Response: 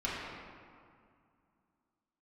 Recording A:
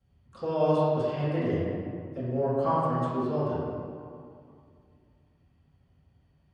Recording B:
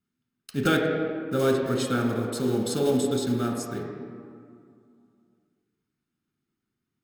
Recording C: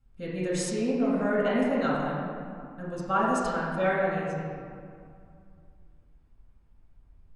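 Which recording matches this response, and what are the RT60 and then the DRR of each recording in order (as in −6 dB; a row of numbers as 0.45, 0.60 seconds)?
C; 2.2, 2.3, 2.2 seconds; −14.0, 0.0, −8.5 decibels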